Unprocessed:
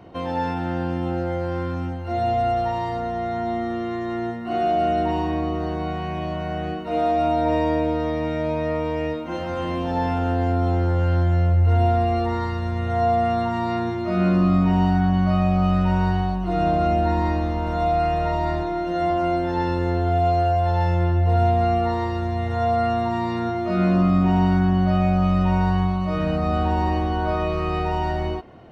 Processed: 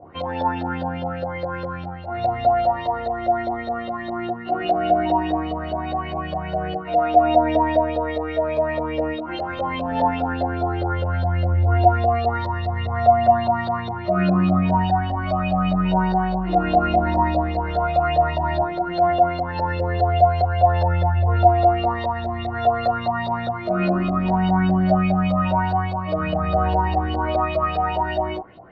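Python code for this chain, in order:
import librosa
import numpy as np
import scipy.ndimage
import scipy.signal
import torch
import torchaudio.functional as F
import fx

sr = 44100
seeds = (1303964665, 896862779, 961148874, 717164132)

y = fx.filter_lfo_lowpass(x, sr, shape='saw_up', hz=4.9, low_hz=550.0, high_hz=4300.0, q=5.5)
y = fx.chorus_voices(y, sr, voices=2, hz=0.15, base_ms=13, depth_ms=3.5, mix_pct=45)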